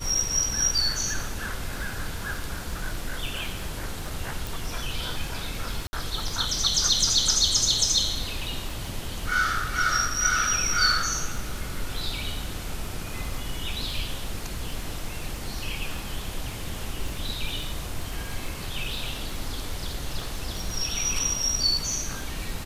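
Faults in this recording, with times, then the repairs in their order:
surface crackle 27 per second −32 dBFS
0:04.47: click
0:05.87–0:05.93: drop-out 60 ms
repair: click removal
repair the gap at 0:05.87, 60 ms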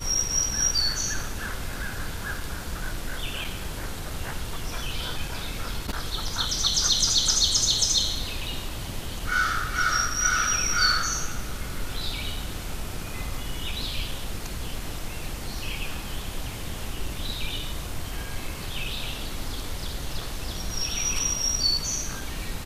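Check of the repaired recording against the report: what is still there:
none of them is left

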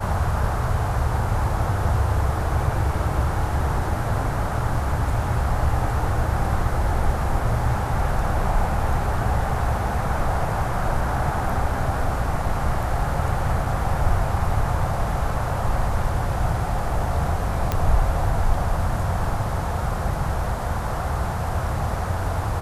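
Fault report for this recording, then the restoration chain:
0:17.72: click −8 dBFS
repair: click removal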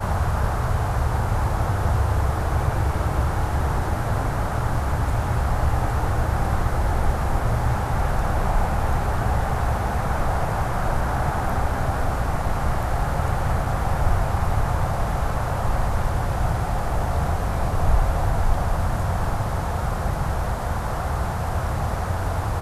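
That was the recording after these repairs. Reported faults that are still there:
none of them is left

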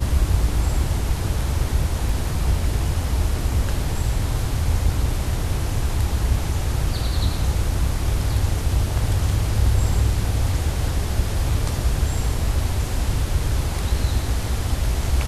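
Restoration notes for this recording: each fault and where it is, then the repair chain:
0:02.09: drop-out 2.9 ms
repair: repair the gap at 0:02.09, 2.9 ms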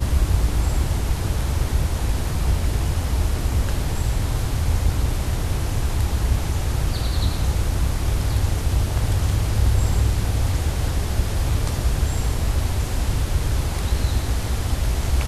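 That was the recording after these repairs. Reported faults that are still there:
none of them is left

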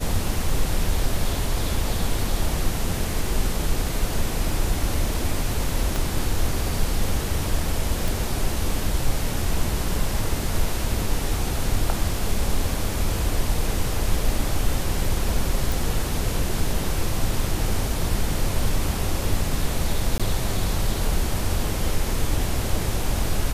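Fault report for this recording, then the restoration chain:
0:05.96: click
0:08.08: click
0:15.72: click
0:20.18–0:20.20: drop-out 16 ms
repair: click removal
repair the gap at 0:20.18, 16 ms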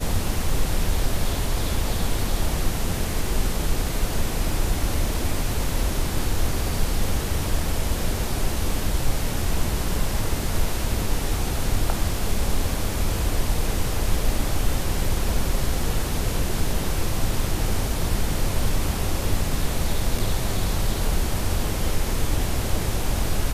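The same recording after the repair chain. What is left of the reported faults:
0:05.96: click

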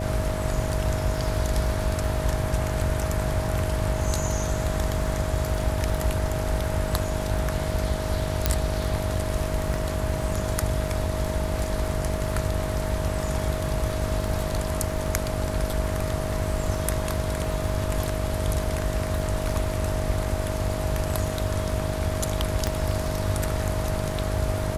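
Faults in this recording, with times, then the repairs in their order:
mains buzz 50 Hz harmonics 14 −30 dBFS
surface crackle 41 per second −34 dBFS
whistle 630 Hz −32 dBFS
0:08.46: click −3 dBFS
0:22.67: click −11 dBFS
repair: click removal
notch filter 630 Hz, Q 30
hum removal 50 Hz, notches 14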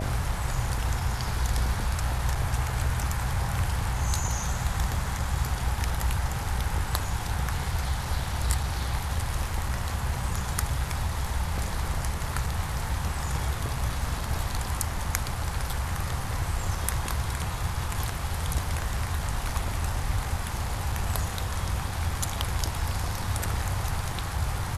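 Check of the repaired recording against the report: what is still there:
none of them is left

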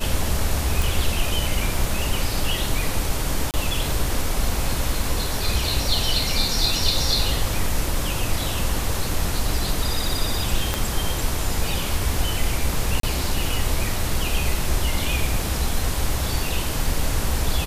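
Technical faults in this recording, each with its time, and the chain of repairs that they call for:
0:00.82: click
0:03.51–0:03.54: drop-out 28 ms
0:10.74: click
0:13.00–0:13.03: drop-out 33 ms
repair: click removal
repair the gap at 0:03.51, 28 ms
repair the gap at 0:13.00, 33 ms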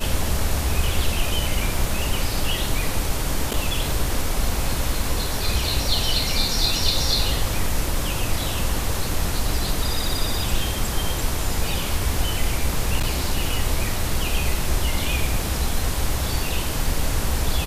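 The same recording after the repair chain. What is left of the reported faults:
0:10.74: click

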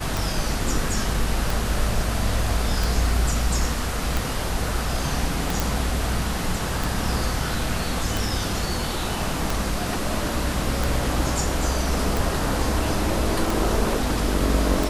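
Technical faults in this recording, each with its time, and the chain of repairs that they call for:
scratch tick 45 rpm
0:05.60: click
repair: click removal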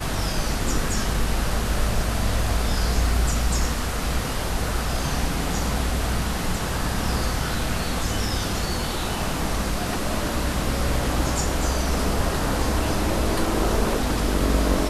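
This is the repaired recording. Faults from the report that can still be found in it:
none of them is left

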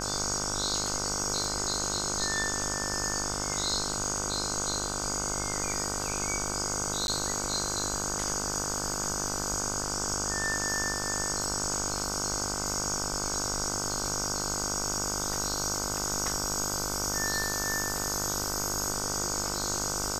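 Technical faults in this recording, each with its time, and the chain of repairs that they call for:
mains buzz 50 Hz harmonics 31 −36 dBFS
surface crackle 34 per second −39 dBFS
0:07.07–0:07.08: drop-out 11 ms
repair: click removal
hum removal 50 Hz, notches 31
repair the gap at 0:07.07, 11 ms

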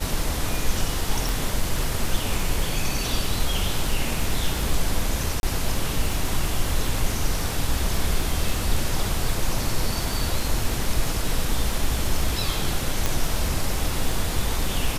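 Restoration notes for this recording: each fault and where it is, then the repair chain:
surface crackle 36 per second −28 dBFS
0:01.29: click
0:05.40–0:05.43: drop-out 31 ms
0:13.06: click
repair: click removal
repair the gap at 0:05.40, 31 ms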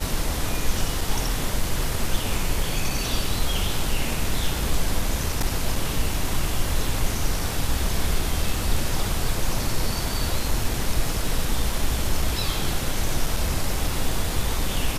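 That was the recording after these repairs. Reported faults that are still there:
0:01.29: click

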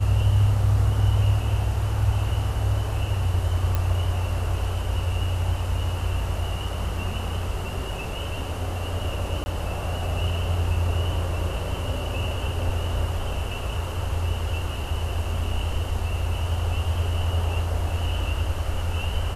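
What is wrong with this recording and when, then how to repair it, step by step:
0:03.75: click
0:09.44–0:09.46: drop-out 20 ms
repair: click removal
repair the gap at 0:09.44, 20 ms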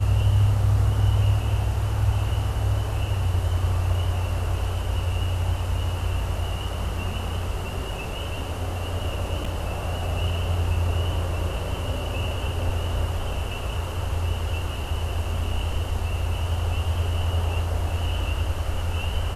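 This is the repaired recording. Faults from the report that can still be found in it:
none of them is left

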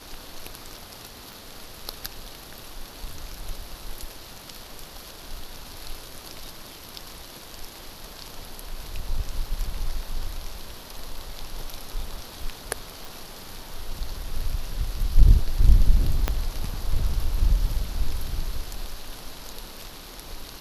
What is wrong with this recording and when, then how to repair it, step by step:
0:01.33: click
0:13.05: click
0:16.28: click −8 dBFS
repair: click removal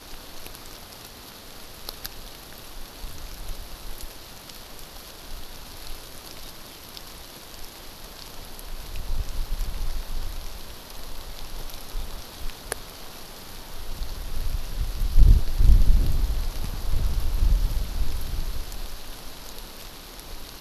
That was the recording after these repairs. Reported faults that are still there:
0:16.28: click

